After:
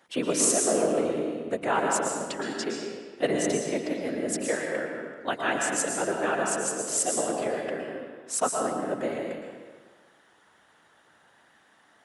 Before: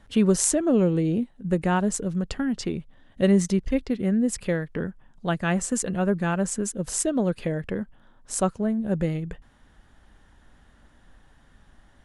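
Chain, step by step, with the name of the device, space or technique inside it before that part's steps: whispering ghost (whisper effect; high-pass 490 Hz 12 dB/octave; reverberation RT60 1.6 s, pre-delay 107 ms, DRR 0.5 dB)

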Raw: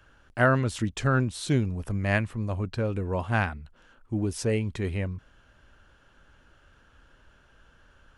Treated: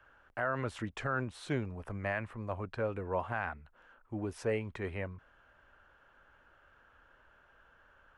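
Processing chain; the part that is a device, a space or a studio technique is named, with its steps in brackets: DJ mixer with the lows and highs turned down (three-band isolator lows -12 dB, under 480 Hz, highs -16 dB, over 2.3 kHz; peak limiter -21.5 dBFS, peak gain reduction 11.5 dB)

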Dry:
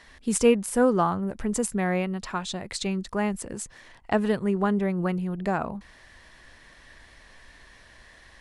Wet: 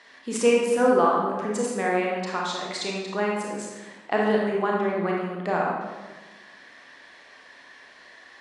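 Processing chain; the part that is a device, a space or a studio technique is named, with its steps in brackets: supermarket ceiling speaker (band-pass 330–6100 Hz; reverberation RT60 1.3 s, pre-delay 27 ms, DRR -2.5 dB)

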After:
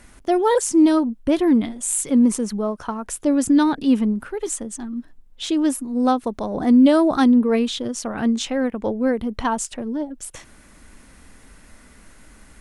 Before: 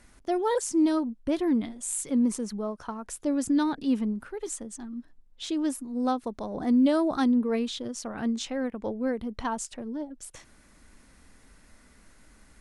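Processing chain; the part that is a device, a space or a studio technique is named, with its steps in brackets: exciter from parts (in parallel at -13 dB: high-pass 2.6 kHz 24 dB/octave + saturation -25.5 dBFS, distortion -19 dB + high-pass 2.8 kHz 24 dB/octave); on the sum: trim +8.5 dB

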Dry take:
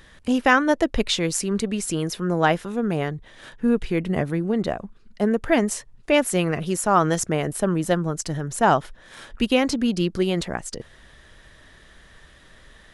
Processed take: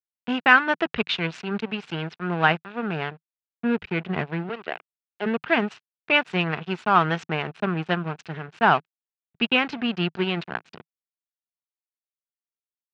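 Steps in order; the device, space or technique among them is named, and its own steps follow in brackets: 4.49–5.26 s: high-pass 340 Hz 24 dB/octave; blown loudspeaker (crossover distortion -30 dBFS; cabinet simulation 150–3800 Hz, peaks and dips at 160 Hz +3 dB, 290 Hz -8 dB, 550 Hz -9 dB, 1.5 kHz +5 dB, 2.6 kHz +7 dB); trim +1 dB

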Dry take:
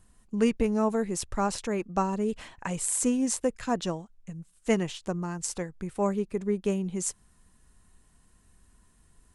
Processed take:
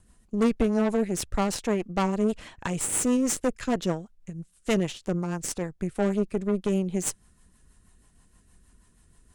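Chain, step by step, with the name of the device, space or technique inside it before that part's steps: overdriven rotary cabinet (valve stage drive 26 dB, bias 0.8; rotary cabinet horn 6.3 Hz); trim +9 dB

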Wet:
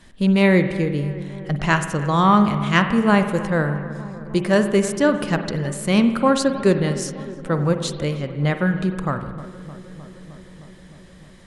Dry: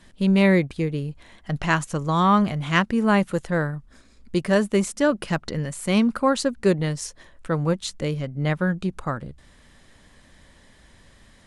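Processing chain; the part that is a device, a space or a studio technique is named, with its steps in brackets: dub delay into a spring reverb (filtered feedback delay 308 ms, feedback 79%, low-pass 1.9 kHz, level -16.5 dB; spring tank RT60 1.2 s, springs 48 ms, chirp 45 ms, DRR 8.5 dB); trim +2.5 dB

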